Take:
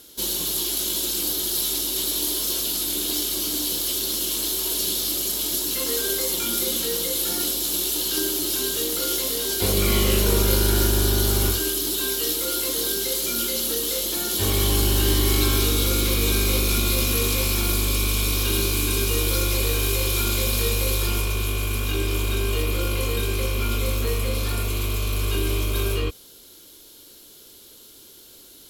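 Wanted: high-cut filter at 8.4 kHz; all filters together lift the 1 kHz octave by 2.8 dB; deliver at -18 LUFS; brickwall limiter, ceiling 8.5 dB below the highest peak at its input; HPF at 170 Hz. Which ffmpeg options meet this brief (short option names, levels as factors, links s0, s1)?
-af "highpass=170,lowpass=8400,equalizer=f=1000:t=o:g=3.5,volume=2.99,alimiter=limit=0.335:level=0:latency=1"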